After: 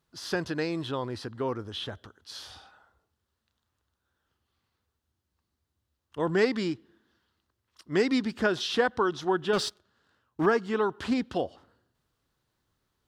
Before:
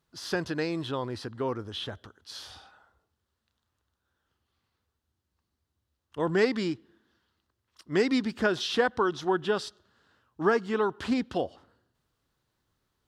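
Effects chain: 9.53–10.46 s: waveshaping leveller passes 2

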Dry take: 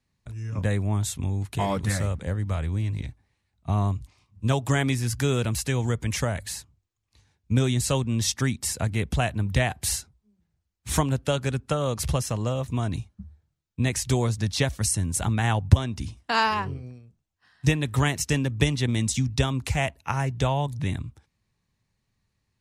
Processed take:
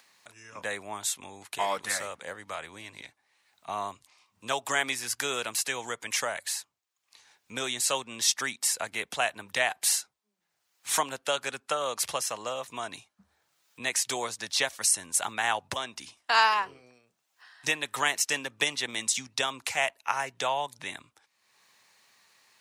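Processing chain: high-pass 740 Hz 12 dB/octave; upward compressor, threshold -49 dBFS; trim +2 dB

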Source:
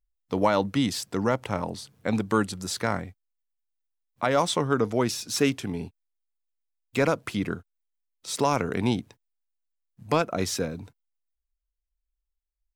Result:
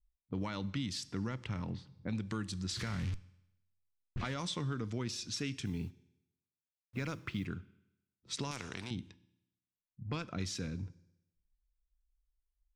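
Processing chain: 2.69–4.34 s: jump at every zero crossing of -27.5 dBFS; amplifier tone stack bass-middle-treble 6-0-2; level-controlled noise filter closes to 340 Hz, open at -41.5 dBFS; compression 4:1, threshold -49 dBFS, peak gain reduction 10 dB; in parallel at -0.5 dB: peak limiter -45 dBFS, peak gain reduction 9 dB; on the sum: low-pass that closes with the level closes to 1.2 kHz, closed at -35.5 dBFS; 5.65–7.46 s: companded quantiser 8-bit; on a send at -16 dB: reverberation RT60 0.90 s, pre-delay 3 ms; 8.51–8.91 s: on the sum: spectrum-flattening compressor 2:1; trim +10 dB

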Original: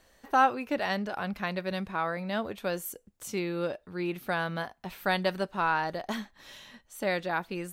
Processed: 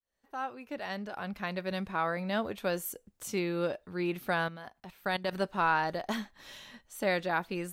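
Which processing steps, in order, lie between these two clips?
fade-in on the opening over 2.11 s; 4.48–5.33 s: level held to a coarse grid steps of 15 dB

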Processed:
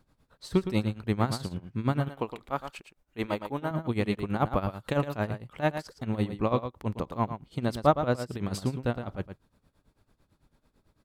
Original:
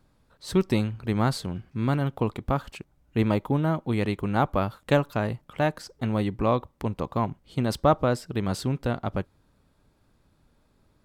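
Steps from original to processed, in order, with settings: delay 113 ms -9.5 dB; tremolo 9 Hz, depth 83%; 2.08–3.71 s: peaking EQ 98 Hz -13 dB 2.9 oct

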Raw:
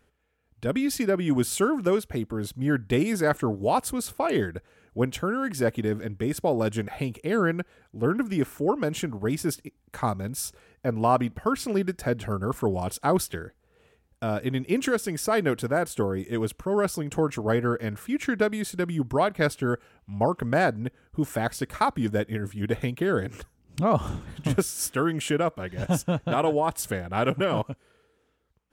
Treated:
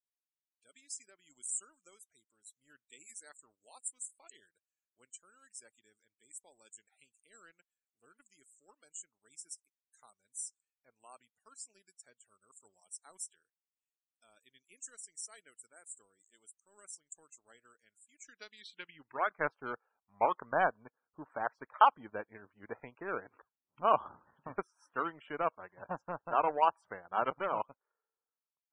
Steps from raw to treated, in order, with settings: band-pass sweep 7.7 kHz -> 1 kHz, 18.18–19.48 s; power-law waveshaper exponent 1.4; loudest bins only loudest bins 64; trim +5 dB

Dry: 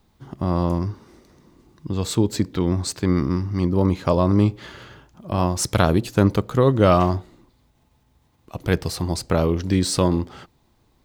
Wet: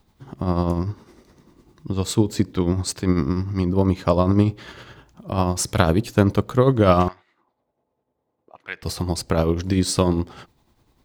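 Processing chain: 7.08–8.83 s: auto-wah 480–2100 Hz, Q 2.2, up, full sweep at -27 dBFS; tremolo 10 Hz, depth 48%; trim +2 dB

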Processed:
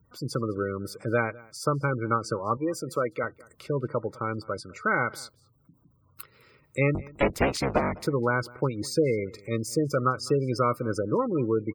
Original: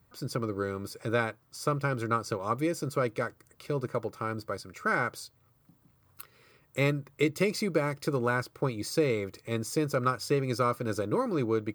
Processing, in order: 6.94–8.01 s: cycle switcher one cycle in 3, inverted; spectral gate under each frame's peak -20 dB strong; 2.57–3.24 s: high-pass 290 Hz 6 dB/octave; echo from a far wall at 35 m, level -23 dB; trim +3 dB

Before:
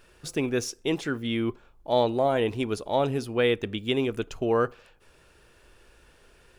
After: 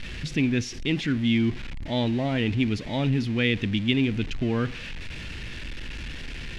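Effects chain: jump at every zero crossing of -32.5 dBFS; low-pass 3.1 kHz 12 dB/octave; high-order bell 730 Hz -15 dB 2.3 oct; trim +6 dB

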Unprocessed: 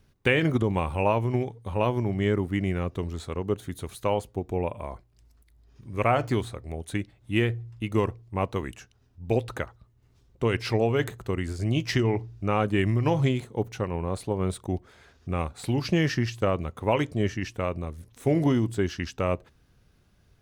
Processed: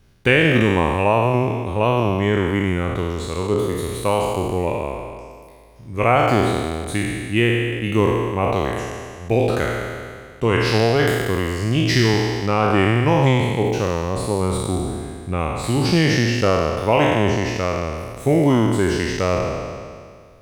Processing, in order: spectral sustain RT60 2.00 s; trim +4.5 dB

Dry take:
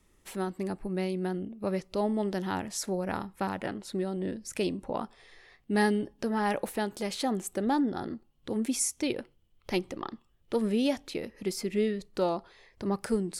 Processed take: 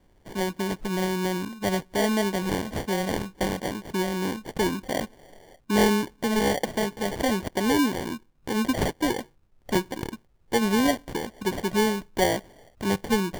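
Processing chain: sample-and-hold 34×; trim +5 dB

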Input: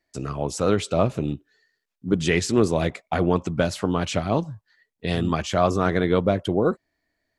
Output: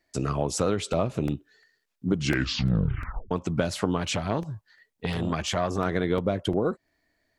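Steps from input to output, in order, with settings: compression 5:1, threshold -25 dBFS, peak gain reduction 11.5 dB; 2.11 s: tape stop 1.20 s; crackling interface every 0.35 s, samples 64, repeat, from 0.58 s; 3.97–5.78 s: transformer saturation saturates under 550 Hz; trim +3.5 dB

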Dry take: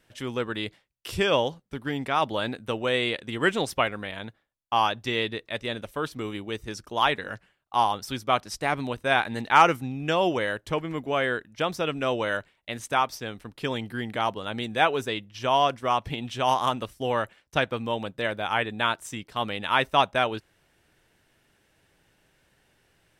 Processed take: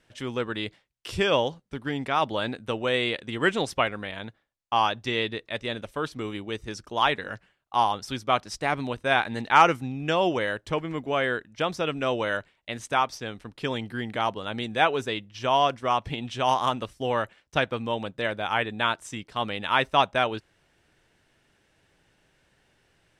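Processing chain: low-pass 8.8 kHz 12 dB/octave

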